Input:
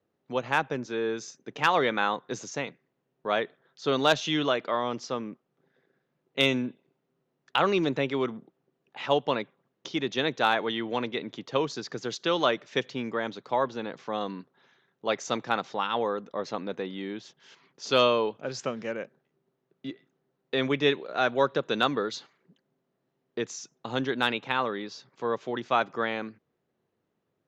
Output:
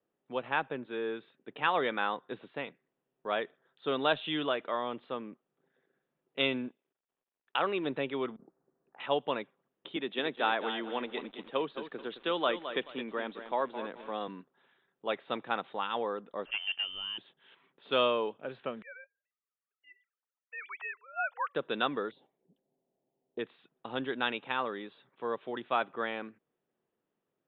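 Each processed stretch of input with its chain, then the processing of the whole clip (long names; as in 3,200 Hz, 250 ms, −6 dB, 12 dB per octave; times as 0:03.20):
0:06.68–0:07.85: mu-law and A-law mismatch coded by A + bass and treble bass −6 dB, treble −3 dB
0:08.36–0:09.00: low-pass filter 1,600 Hz 24 dB per octave + compressor whose output falls as the input rises −49 dBFS, ratio −0.5
0:09.96–0:14.28: high-pass filter 160 Hz 24 dB per octave + feedback echo at a low word length 216 ms, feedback 35%, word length 7 bits, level −9.5 dB
0:16.45–0:17.18: parametric band 570 Hz +9.5 dB 0.59 octaves + hard clipping −22 dBFS + voice inversion scrambler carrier 3,300 Hz
0:18.82–0:21.55: three sine waves on the formant tracks + Butterworth high-pass 760 Hz
0:22.11–0:23.39: drawn EQ curve 770 Hz 0 dB, 1,300 Hz −23 dB, 6,500 Hz −10 dB + one half of a high-frequency compander encoder only
whole clip: Butterworth low-pass 3,700 Hz 96 dB per octave; parametric band 84 Hz −11 dB 1.5 octaves; notch filter 2,100 Hz, Q 26; level −5 dB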